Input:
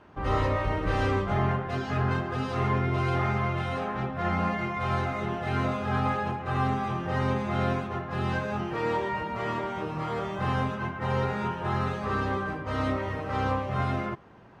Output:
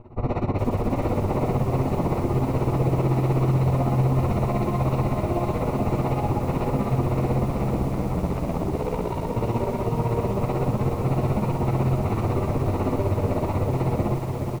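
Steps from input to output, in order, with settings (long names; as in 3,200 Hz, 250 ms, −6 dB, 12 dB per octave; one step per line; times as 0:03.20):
lower of the sound and its delayed copy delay 8.3 ms
low-shelf EQ 130 Hz +9.5 dB
in parallel at +3 dB: brickwall limiter −21 dBFS, peak gain reduction 8 dB
on the sum: wave folding −20 dBFS
amplitude tremolo 16 Hz, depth 83%
moving average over 27 samples
0:07.45–0:09.35: ring modulation 79 Hz → 25 Hz
on a send: repeating echo 726 ms, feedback 49%, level −10 dB
on the sum: feedback echo at a low word length 421 ms, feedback 55%, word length 8 bits, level −6 dB
level +6 dB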